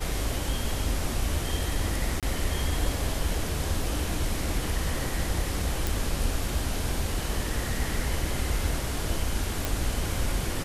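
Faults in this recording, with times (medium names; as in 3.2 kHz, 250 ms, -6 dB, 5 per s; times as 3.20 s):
2.20–2.23 s: dropout 27 ms
5.87 s: pop
9.65 s: pop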